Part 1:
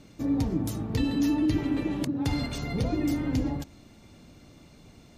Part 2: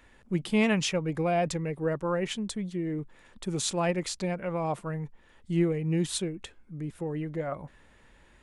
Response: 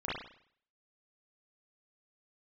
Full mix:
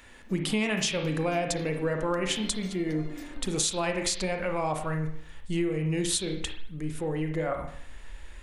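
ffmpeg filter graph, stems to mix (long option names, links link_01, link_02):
-filter_complex "[0:a]highpass=300,adelay=100,volume=-10.5dB[link_01];[1:a]highshelf=frequency=2200:gain=8.5,volume=1dB,asplit=2[link_02][link_03];[link_03]volume=-7.5dB[link_04];[2:a]atrim=start_sample=2205[link_05];[link_04][link_05]afir=irnorm=-1:irlink=0[link_06];[link_01][link_02][link_06]amix=inputs=3:normalize=0,asubboost=boost=8:cutoff=53,acompressor=threshold=-24dB:ratio=10"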